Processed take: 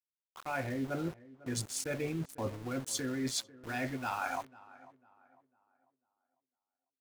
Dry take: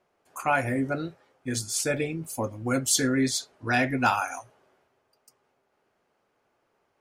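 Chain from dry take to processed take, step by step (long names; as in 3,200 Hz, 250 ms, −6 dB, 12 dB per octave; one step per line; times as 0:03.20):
adaptive Wiener filter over 9 samples
reversed playback
downward compressor 20 to 1, threshold −36 dBFS, peak gain reduction 19.5 dB
reversed playback
centre clipping without the shift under −48 dBFS
tape delay 498 ms, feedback 39%, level −18 dB, low-pass 1,700 Hz
level +4 dB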